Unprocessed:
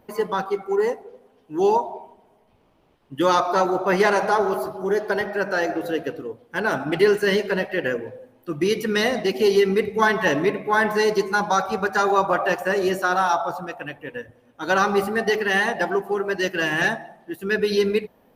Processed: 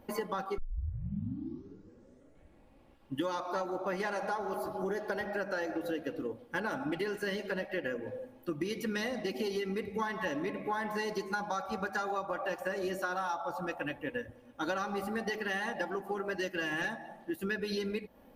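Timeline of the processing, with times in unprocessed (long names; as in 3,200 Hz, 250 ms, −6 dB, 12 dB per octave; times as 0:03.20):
0:00.58: tape start 2.57 s
whole clip: low-shelf EQ 140 Hz +6 dB; comb filter 3.6 ms, depth 40%; downward compressor 10 to 1, threshold −29 dBFS; level −2.5 dB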